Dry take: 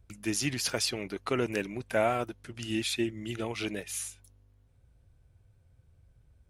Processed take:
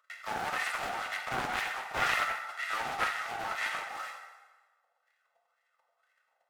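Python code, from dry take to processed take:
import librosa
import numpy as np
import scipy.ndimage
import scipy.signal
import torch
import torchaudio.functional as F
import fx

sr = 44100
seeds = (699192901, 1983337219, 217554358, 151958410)

y = fx.envelope_flatten(x, sr, power=0.1)
y = scipy.signal.sosfilt(scipy.signal.butter(16, 310.0, 'highpass', fs=sr, output='sos'), y)
y = y + 0.81 * np.pad(y, (int(1.5 * sr / 1000.0), 0))[:len(y)]
y = fx.leveller(y, sr, passes=3)
y = fx.wah_lfo(y, sr, hz=2.0, low_hz=740.0, high_hz=1900.0, q=5.7)
y = fx.rev_plate(y, sr, seeds[0], rt60_s=1.3, hf_ratio=0.8, predelay_ms=0, drr_db=0.5)
y = fx.doppler_dist(y, sr, depth_ms=0.6)
y = y * 10.0 ** (1.5 / 20.0)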